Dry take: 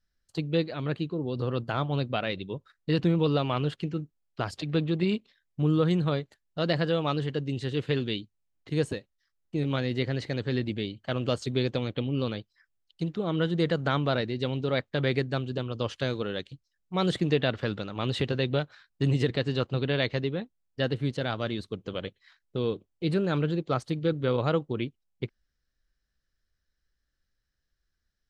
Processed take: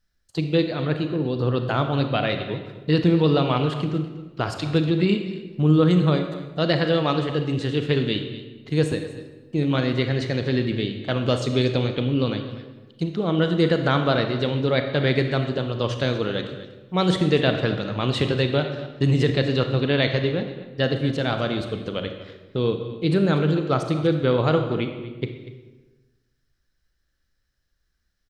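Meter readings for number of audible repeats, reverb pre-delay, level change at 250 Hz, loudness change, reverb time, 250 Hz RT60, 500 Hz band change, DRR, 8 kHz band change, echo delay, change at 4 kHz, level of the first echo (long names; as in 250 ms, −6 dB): 1, 30 ms, +7.0 dB, +6.5 dB, 1.2 s, 1.4 s, +6.5 dB, 6.0 dB, can't be measured, 241 ms, +6.5 dB, −16.0 dB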